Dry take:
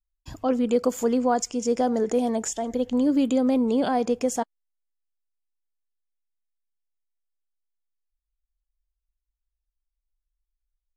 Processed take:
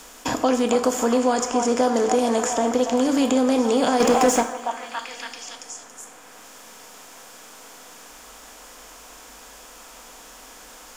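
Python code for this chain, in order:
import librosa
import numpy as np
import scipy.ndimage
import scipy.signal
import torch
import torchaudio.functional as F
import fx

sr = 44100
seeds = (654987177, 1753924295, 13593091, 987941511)

y = fx.bin_compress(x, sr, power=0.6)
y = fx.tilt_shelf(y, sr, db=-4.0, hz=710.0)
y = fx.echo_stepped(y, sr, ms=281, hz=910.0, octaves=0.7, feedback_pct=70, wet_db=-4.0)
y = fx.leveller(y, sr, passes=3, at=(4.0, 4.41))
y = fx.rev_double_slope(y, sr, seeds[0], early_s=0.46, late_s=1.8, knee_db=-18, drr_db=6.0)
y = fx.band_squash(y, sr, depth_pct=70)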